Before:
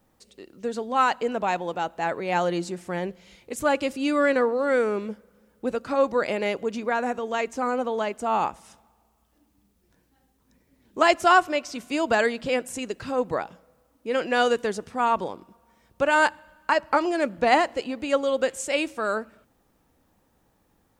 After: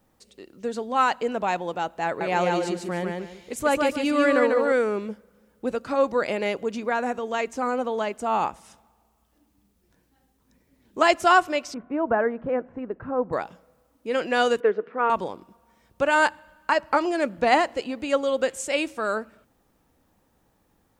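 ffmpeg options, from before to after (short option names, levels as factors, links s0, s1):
-filter_complex "[0:a]asettb=1/sr,asplit=3[s0][s1][s2];[s0]atrim=end=2.064[s3];[s1]atrim=start=2.06:end=4.72,asetpts=PTS-STARTPTS,afade=t=in:d=0.004:c=qsin,afade=t=out:st=2.656:d=0.004:c=qsin,aecho=1:1:146|292|438|584:0.708|0.184|0.0479|0.0124,atrim=end_sample=117306[s4];[s2]atrim=start=4.716[s5];[s3][s4]acrossfade=d=0.004:c1=hsin:c2=qsin[s6];[s6][s5]acrossfade=d=0.004:c1=qsin:c2=hsin,asettb=1/sr,asplit=3[s7][s8][s9];[s7]atrim=end=11.744[s10];[s8]atrim=start=11.74:end=13.33,asetpts=PTS-STARTPTS,afade=t=in:d=0.004:c=qsin,afade=t=out:st=1.586:d=0.004:c=qsin,lowpass=f=1500:w=0.5412,lowpass=f=1500:w=1.3066[s11];[s9]atrim=start=13.326[s12];[s10][s11]acrossfade=d=0.004:c1=hsin:c2=qsin[s13];[s13][s12]acrossfade=d=0.004:c1=qsin:c2=hsin,asettb=1/sr,asplit=3[s14][s15][s16];[s14]atrim=end=14.604[s17];[s15]atrim=start=14.6:end=15.1,asetpts=PTS-STARTPTS,afade=t=in:d=0.004:c=qsin,afade=t=out:st=0.496:d=0.004:c=qsin,highpass=f=220:w=0.5412,highpass=f=220:w=1.3066,equalizer=f=250:t=q:w=4:g=-4,equalizer=f=450:t=q:w=4:g=9,equalizer=f=800:t=q:w=4:g=-6,equalizer=f=1400:t=q:w=4:g=4,lowpass=f=2400:w=0.5412,lowpass=f=2400:w=1.3066[s18];[s16]atrim=start=15.096[s19];[s17][s18]acrossfade=d=0.004:c1=hsin:c2=qsin[s20];[s20][s19]acrossfade=d=0.004:c1=qsin:c2=hsin"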